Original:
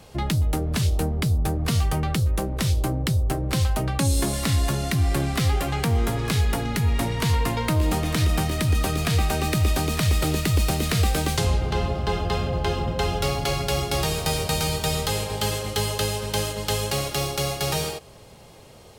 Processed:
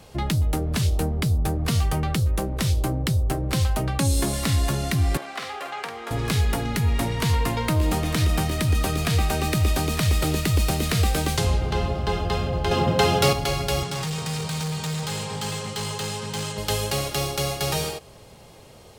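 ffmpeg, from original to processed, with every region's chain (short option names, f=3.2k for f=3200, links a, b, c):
-filter_complex "[0:a]asettb=1/sr,asplit=3[a][b][c];[a]atrim=end=5.174[d];[b]atrim=start=5.17:end=6.11,asetpts=PTS-STARTPTS,afade=t=in:d=0.004:c=qsin,afade=t=out:st=0.936:d=0.004:c=qsin,highpass=710,aemphasis=mode=reproduction:type=75kf,asplit=2[e][f];[f]adelay=48,volume=-6dB[g];[e][g]amix=inputs=2:normalize=0,atrim=end_sample=41454[h];[c]atrim=start=6.106[i];[d][h]acrossfade=d=0.004:c1=hsin:c2=qsin[j];[j][i]acrossfade=d=0.004:c1=qsin:c2=hsin,asettb=1/sr,asplit=3[k][l][m];[k]atrim=end=12.714[n];[l]atrim=start=12.71:end=13.33,asetpts=PTS-STARTPTS,afade=t=in:d=0.004:c=qsin,afade=t=out:st=0.616:d=0.004:c=qsin,highpass=f=98:w=0.5412,highpass=f=98:w=1.3066,acontrast=72[o];[m]atrim=start=13.326[p];[n][o]acrossfade=d=0.004:c1=hsin:c2=qsin[q];[q][p]acrossfade=d=0.004:c1=qsin:c2=hsin,asettb=1/sr,asplit=3[r][s][t];[r]atrim=end=13.834[u];[s]atrim=start=13.83:end=16.58,asetpts=PTS-STARTPTS,afade=t=in:d=0.004:c=qsin,afade=t=out:st=2.746:d=0.004:c=qsin,highpass=f=110:w=0.5412,highpass=f=110:w=1.3066,equalizer=f=160:t=q:w=4:g=9,equalizer=f=330:t=q:w=4:g=-8,equalizer=f=640:t=q:w=4:g=-9,equalizer=f=970:t=q:w=4:g=4,equalizer=f=7.8k:t=q:w=4:g=3,lowpass=f=8.9k:w=0.5412,lowpass=f=8.9k:w=1.3066,volume=26dB,asoftclip=hard,volume=-26dB[v];[t]atrim=start=16.576[w];[u][v]acrossfade=d=0.004:c1=hsin:c2=qsin[x];[x][w]acrossfade=d=0.004:c1=qsin:c2=hsin"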